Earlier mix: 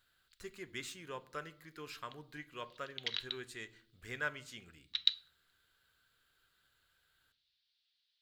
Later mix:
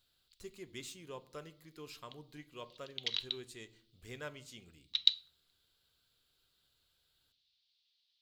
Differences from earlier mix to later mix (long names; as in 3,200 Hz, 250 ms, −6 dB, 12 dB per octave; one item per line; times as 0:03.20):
background +4.5 dB
master: add parametric band 1,600 Hz −12.5 dB 0.95 octaves